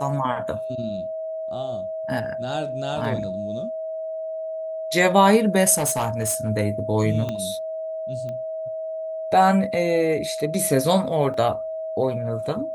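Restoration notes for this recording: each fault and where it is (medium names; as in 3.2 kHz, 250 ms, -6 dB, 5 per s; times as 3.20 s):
whine 640 Hz -27 dBFS
5.75–6.50 s: clipped -18.5 dBFS
7.29 s: pop -15 dBFS
8.29 s: pop -23 dBFS
11.34 s: dropout 2 ms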